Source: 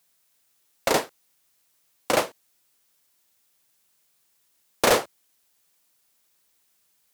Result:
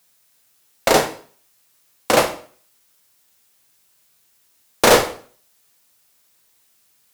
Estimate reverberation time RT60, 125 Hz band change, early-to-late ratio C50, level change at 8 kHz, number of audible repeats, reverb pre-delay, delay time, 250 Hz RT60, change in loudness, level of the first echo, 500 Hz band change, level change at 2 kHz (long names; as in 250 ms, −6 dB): 0.45 s, +9.0 dB, 11.0 dB, +7.0 dB, no echo audible, 6 ms, no echo audible, 0.50 s, +7.0 dB, no echo audible, +7.5 dB, +7.0 dB